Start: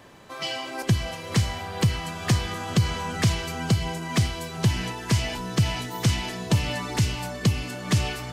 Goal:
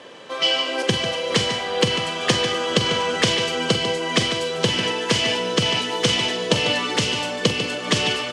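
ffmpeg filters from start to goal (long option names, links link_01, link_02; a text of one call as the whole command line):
ffmpeg -i in.wav -filter_complex "[0:a]highpass=260,equalizer=frequency=500:width_type=q:width=4:gain=9,equalizer=frequency=750:width_type=q:width=4:gain=-3,equalizer=frequency=3100:width_type=q:width=4:gain=8,equalizer=frequency=7400:width_type=q:width=4:gain=-3,lowpass=frequency=8700:width=0.5412,lowpass=frequency=8700:width=1.3066,asplit=2[link_01][link_02];[link_02]adelay=45,volume=-11.5dB[link_03];[link_01][link_03]amix=inputs=2:normalize=0,asplit=2[link_04][link_05];[link_05]aecho=0:1:146:0.335[link_06];[link_04][link_06]amix=inputs=2:normalize=0,volume=6.5dB" out.wav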